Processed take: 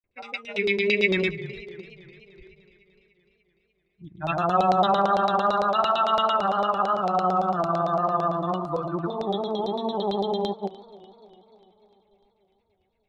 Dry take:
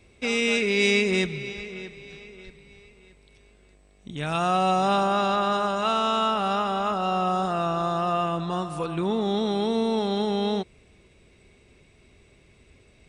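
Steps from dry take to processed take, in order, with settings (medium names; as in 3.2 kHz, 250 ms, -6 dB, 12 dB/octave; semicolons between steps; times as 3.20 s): spectral noise reduction 23 dB; granulator, pitch spread up and down by 0 st; LFO low-pass saw down 8.9 Hz 550–4800 Hz; modulated delay 296 ms, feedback 62%, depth 83 cents, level -20 dB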